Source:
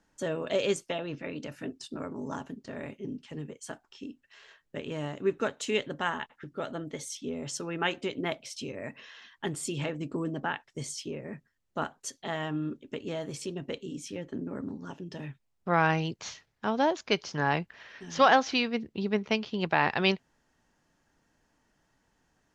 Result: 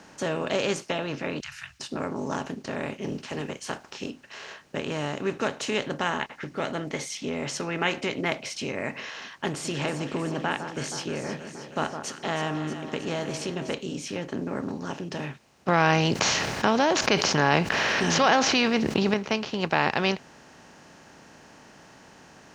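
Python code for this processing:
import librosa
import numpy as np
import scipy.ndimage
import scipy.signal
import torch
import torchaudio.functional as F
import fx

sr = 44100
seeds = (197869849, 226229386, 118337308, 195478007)

y = fx.cheby2_bandstop(x, sr, low_hz=230.0, high_hz=550.0, order=4, stop_db=70, at=(1.4, 1.8))
y = fx.spec_clip(y, sr, under_db=12, at=(3.01, 4.09), fade=0.02)
y = fx.peak_eq(y, sr, hz=2100.0, db=10.0, octaves=0.3, at=(6.21, 9.1))
y = fx.echo_alternate(y, sr, ms=158, hz=1500.0, feedback_pct=72, wet_db=-13.5, at=(9.64, 13.73), fade=0.02)
y = fx.env_flatten(y, sr, amount_pct=70, at=(15.68, 19.14))
y = fx.bin_compress(y, sr, power=0.6)
y = scipy.signal.sosfilt(scipy.signal.butter(2, 51.0, 'highpass', fs=sr, output='sos'), y)
y = y * librosa.db_to_amplitude(-3.5)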